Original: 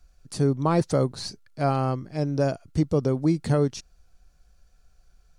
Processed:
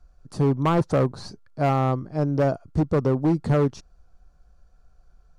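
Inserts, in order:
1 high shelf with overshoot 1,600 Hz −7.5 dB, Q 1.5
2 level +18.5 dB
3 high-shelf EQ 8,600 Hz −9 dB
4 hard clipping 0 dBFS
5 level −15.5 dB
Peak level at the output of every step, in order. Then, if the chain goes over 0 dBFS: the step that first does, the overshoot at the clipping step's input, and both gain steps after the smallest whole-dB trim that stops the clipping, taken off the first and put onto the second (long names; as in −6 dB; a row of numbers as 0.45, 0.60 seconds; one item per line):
−11.0, +7.5, +7.5, 0.0, −15.5 dBFS
step 2, 7.5 dB
step 2 +10.5 dB, step 5 −7.5 dB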